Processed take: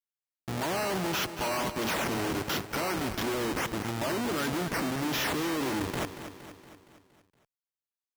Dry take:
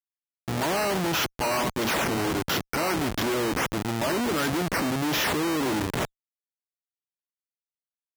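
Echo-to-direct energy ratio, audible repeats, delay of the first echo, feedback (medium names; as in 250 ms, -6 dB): -9.5 dB, 5, 233 ms, 56%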